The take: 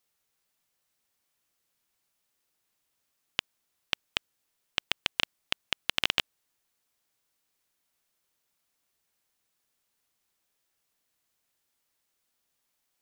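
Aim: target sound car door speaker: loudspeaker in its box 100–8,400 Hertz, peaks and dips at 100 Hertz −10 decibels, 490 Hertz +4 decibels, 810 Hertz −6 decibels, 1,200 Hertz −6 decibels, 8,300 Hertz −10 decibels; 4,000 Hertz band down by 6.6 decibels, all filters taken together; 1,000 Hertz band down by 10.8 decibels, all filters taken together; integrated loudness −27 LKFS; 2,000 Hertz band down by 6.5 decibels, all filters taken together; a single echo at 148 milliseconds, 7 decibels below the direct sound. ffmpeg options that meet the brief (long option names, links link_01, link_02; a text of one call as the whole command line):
ffmpeg -i in.wav -af "highpass=100,equalizer=frequency=100:width_type=q:width=4:gain=-10,equalizer=frequency=490:width_type=q:width=4:gain=4,equalizer=frequency=810:width_type=q:width=4:gain=-6,equalizer=frequency=1200:width_type=q:width=4:gain=-6,equalizer=frequency=8300:width_type=q:width=4:gain=-10,lowpass=frequency=8400:width=0.5412,lowpass=frequency=8400:width=1.3066,equalizer=frequency=1000:width_type=o:gain=-7,equalizer=frequency=2000:width_type=o:gain=-4,equalizer=frequency=4000:width_type=o:gain=-6.5,aecho=1:1:148:0.447,volume=11dB" out.wav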